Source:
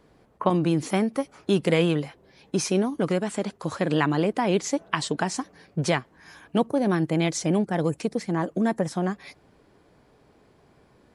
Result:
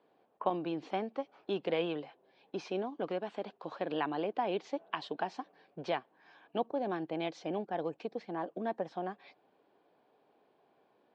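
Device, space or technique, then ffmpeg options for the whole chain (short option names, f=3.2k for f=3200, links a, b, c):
phone earpiece: -af "highpass=340,equalizer=f=750:t=q:w=4:g=5,equalizer=f=1.3k:t=q:w=4:g=-4,equalizer=f=2k:t=q:w=4:g=-7,lowpass=f=3.7k:w=0.5412,lowpass=f=3.7k:w=1.3066,volume=-9dB"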